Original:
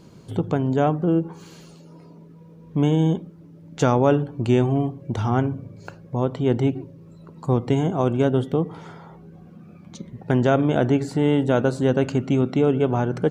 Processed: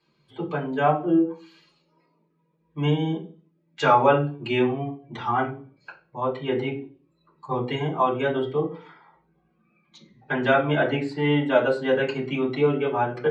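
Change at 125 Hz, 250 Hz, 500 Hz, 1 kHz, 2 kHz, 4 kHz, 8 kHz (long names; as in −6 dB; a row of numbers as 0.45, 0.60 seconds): −7.5 dB, −5.0 dB, −1.5 dB, +3.5 dB, +6.0 dB, +3.0 dB, can't be measured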